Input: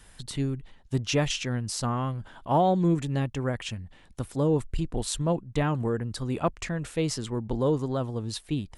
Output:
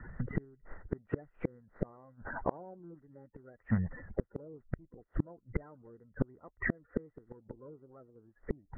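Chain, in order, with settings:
spectral magnitudes quantised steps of 30 dB
Chebyshev low-pass with heavy ripple 2,000 Hz, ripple 6 dB
gate with flip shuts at −30 dBFS, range −36 dB
level +12.5 dB

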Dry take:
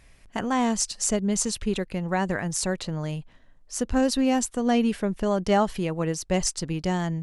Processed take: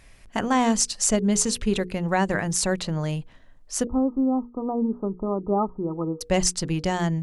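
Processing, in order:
mains-hum notches 60/120/180/240/300/360/420/480 Hz
0:03.87–0:06.21: Chebyshev low-pass with heavy ripple 1,300 Hz, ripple 9 dB
level +3.5 dB

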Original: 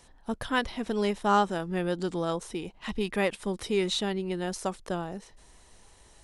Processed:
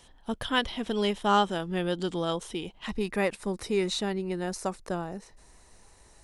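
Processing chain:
parametric band 3,200 Hz +9.5 dB 0.29 octaves, from 0:02.86 −8.5 dB

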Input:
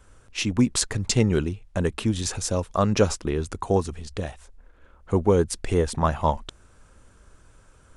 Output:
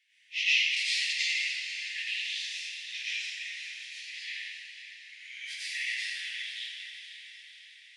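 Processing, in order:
random phases in long frames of 100 ms
Butterworth high-pass 1,900 Hz 96 dB per octave
high-shelf EQ 9,300 Hz +5 dB
0:00.75–0:03.47: output level in coarse steps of 12 dB
high-frequency loss of the air 340 metres
feedback delay with all-pass diffusion 513 ms, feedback 54%, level −9.5 dB
dense smooth reverb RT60 1.9 s, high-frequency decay 0.8×, pre-delay 80 ms, DRR −10 dB
level +5 dB

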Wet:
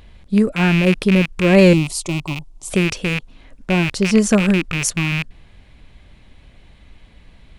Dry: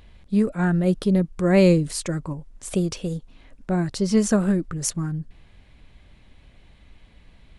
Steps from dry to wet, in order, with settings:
loose part that buzzes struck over −33 dBFS, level −16 dBFS
0:01.73–0:02.70: phaser with its sweep stopped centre 330 Hz, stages 8
level +5 dB

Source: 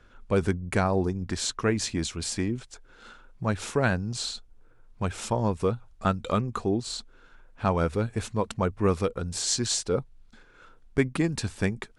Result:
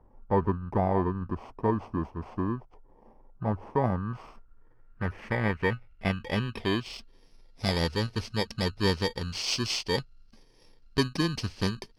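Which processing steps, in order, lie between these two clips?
samples in bit-reversed order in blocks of 32 samples
low-pass filter sweep 920 Hz → 4,400 Hz, 0:03.61–0:07.35
level −1.5 dB

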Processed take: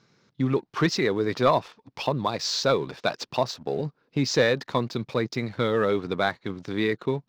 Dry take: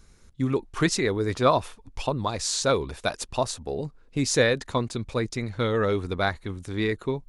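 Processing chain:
elliptic band-pass filter 130–5,200 Hz
in parallel at −1 dB: downward compressor, threshold −33 dBFS, peak gain reduction 17.5 dB
on the sum: leveller curve on the samples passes 1
level −4 dB

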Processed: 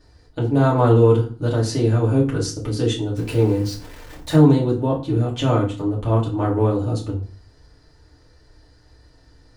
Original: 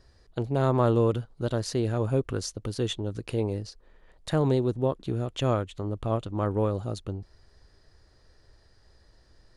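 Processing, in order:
0:03.16–0:04.36: converter with a step at zero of −38.5 dBFS
feedback delay network reverb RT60 0.39 s, low-frequency decay 1.45×, high-frequency decay 0.8×, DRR −5.5 dB

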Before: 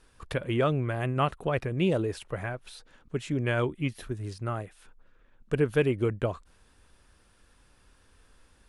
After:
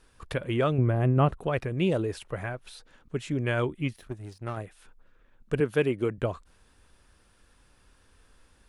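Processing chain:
0:00.78–0:01.39: tilt shelving filter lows +7.5 dB
0:03.96–0:04.57: power curve on the samples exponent 1.4
0:05.60–0:06.18: high-pass filter 140 Hz

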